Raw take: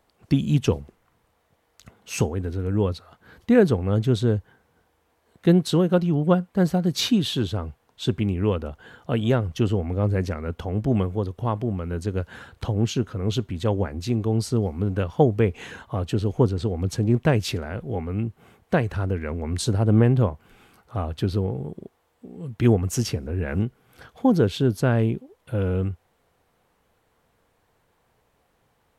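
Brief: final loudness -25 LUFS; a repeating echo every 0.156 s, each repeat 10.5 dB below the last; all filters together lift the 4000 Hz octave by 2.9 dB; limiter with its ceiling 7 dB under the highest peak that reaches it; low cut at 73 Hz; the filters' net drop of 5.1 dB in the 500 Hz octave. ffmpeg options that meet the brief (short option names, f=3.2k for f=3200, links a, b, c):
-af "highpass=73,equalizer=f=500:t=o:g=-6.5,equalizer=f=4k:t=o:g=3.5,alimiter=limit=-14.5dB:level=0:latency=1,aecho=1:1:156|312|468:0.299|0.0896|0.0269,volume=2dB"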